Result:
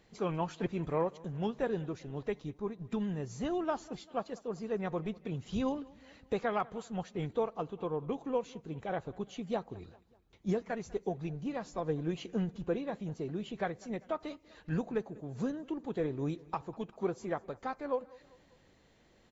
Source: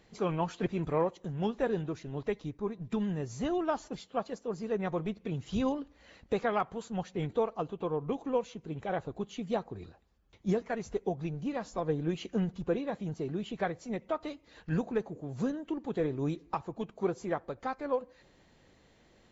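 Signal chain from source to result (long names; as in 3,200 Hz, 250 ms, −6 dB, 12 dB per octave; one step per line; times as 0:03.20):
repeating echo 197 ms, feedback 52%, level −23 dB
level −2.5 dB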